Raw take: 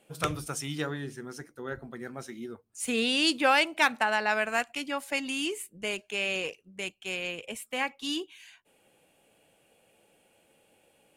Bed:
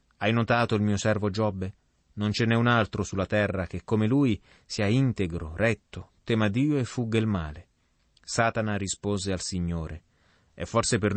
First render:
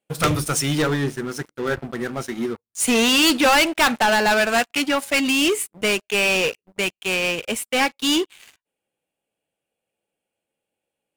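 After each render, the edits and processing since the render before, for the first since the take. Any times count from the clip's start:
leveller curve on the samples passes 5
expander for the loud parts 1.5 to 1, over −31 dBFS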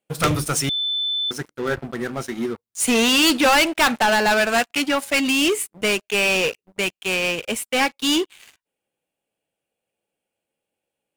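0:00.69–0:01.31: beep over 3,520 Hz −20.5 dBFS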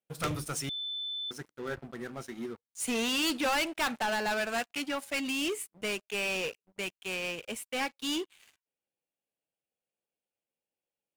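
level −13 dB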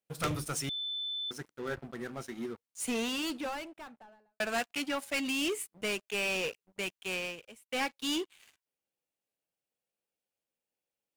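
0:02.50–0:04.40: fade out and dull
0:07.18–0:07.69: fade out quadratic, to −21 dB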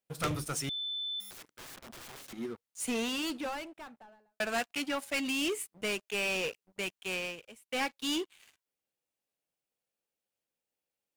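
0:01.20–0:02.33: wrap-around overflow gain 42.5 dB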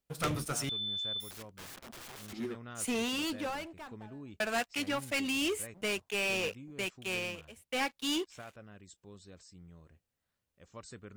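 mix in bed −24.5 dB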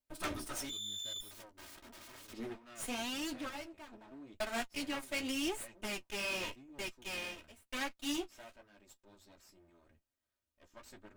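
lower of the sound and its delayed copy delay 3.2 ms
flanger 0.89 Hz, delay 6.8 ms, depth 8.1 ms, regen −33%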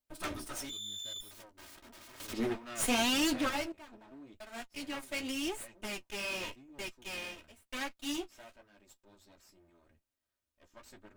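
0:02.20–0:03.72: clip gain +10 dB
0:04.40–0:05.02: fade in, from −13 dB

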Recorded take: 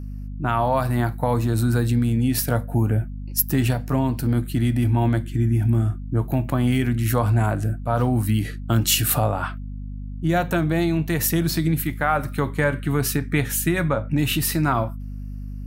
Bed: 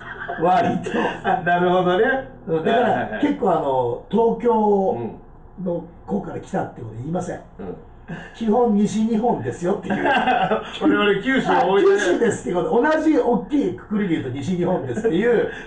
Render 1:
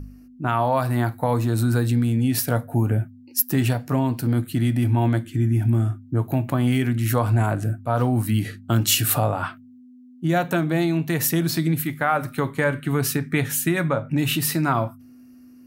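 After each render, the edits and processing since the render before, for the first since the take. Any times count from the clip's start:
hum removal 50 Hz, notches 4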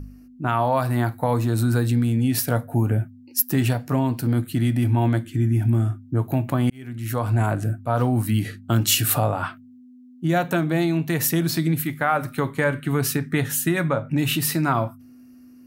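0:06.70–0:07.45: fade in
0:13.25–0:13.75: notch filter 2,300 Hz, Q 8.8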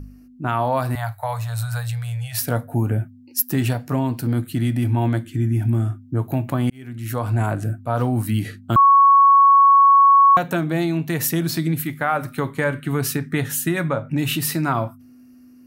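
0:00.95–0:02.41: elliptic band-stop filter 110–620 Hz, stop band 50 dB
0:08.76–0:10.37: beep over 1,110 Hz −8.5 dBFS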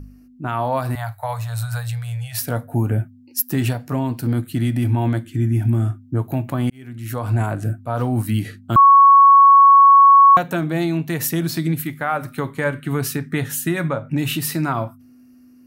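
in parallel at −1 dB: brickwall limiter −16.5 dBFS, peak gain reduction 11 dB
on the sum: expander for the loud parts 1.5 to 1, over −22 dBFS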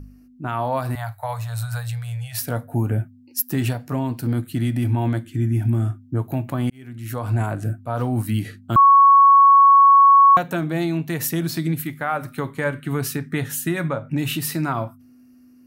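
level −2 dB

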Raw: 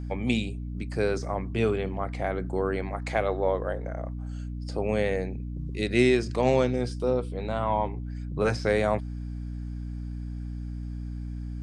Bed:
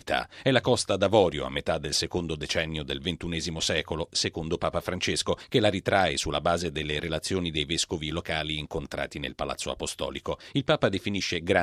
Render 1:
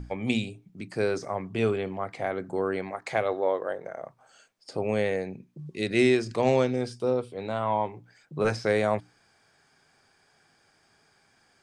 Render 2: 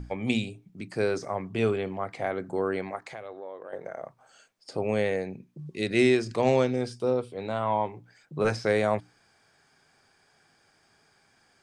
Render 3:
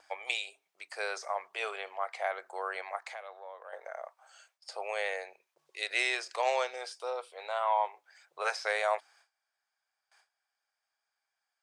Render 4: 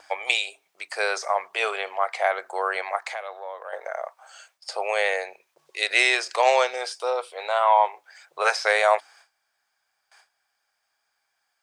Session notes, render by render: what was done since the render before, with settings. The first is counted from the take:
mains-hum notches 60/120/180/240/300 Hz
0:02.98–0:03.73: downward compressor 3 to 1, threshold −41 dBFS
noise gate with hold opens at −52 dBFS; inverse Chebyshev high-pass filter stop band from 250 Hz, stop band 50 dB
level +10.5 dB

